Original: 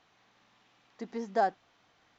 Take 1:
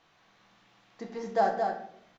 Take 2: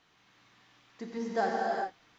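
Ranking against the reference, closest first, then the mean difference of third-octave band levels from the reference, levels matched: 1, 2; 4.0, 6.0 dB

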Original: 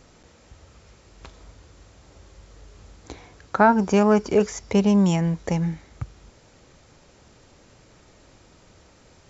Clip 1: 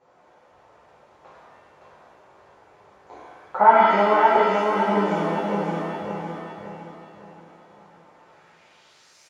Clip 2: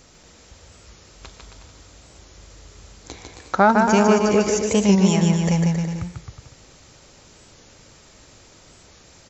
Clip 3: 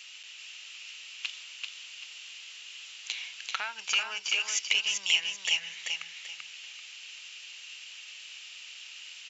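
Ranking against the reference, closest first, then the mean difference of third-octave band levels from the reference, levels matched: 2, 1, 3; 5.0, 8.0, 13.5 dB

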